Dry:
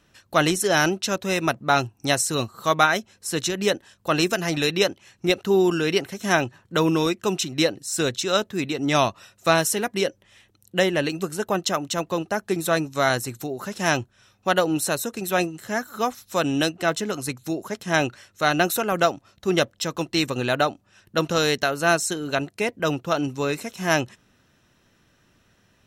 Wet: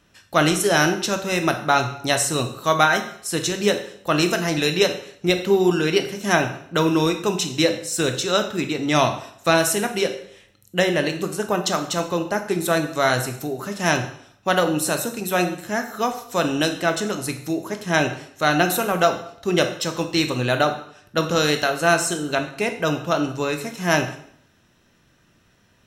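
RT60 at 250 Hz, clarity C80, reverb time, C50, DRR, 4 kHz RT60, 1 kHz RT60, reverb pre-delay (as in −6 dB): 0.65 s, 13.0 dB, 0.65 s, 9.5 dB, 6.0 dB, 0.60 s, 0.65 s, 6 ms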